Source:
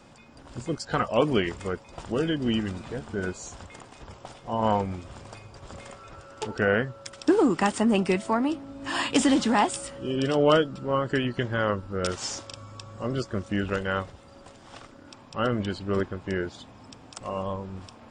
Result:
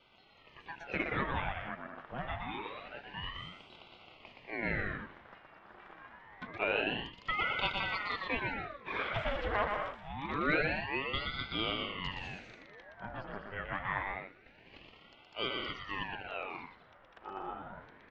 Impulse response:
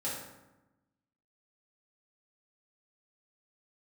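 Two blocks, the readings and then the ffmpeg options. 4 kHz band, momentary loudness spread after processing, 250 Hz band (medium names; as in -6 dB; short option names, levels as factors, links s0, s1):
-5.0 dB, 20 LU, -17.0 dB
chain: -af "highpass=f=310:w=0.5412,highpass=f=310:w=1.3066,equalizer=f=340:t=q:w=4:g=-9,equalizer=f=500:t=q:w=4:g=-7,equalizer=f=720:t=q:w=4:g=-7,equalizer=f=1600:t=q:w=4:g=4,equalizer=f=2300:t=q:w=4:g=-5,lowpass=f=2600:w=0.5412,lowpass=f=2600:w=1.3066,aecho=1:1:120|198|248.7|281.7|303.1:0.631|0.398|0.251|0.158|0.1,aeval=exprs='val(0)*sin(2*PI*990*n/s+990*0.8/0.26*sin(2*PI*0.26*n/s))':c=same,volume=0.631"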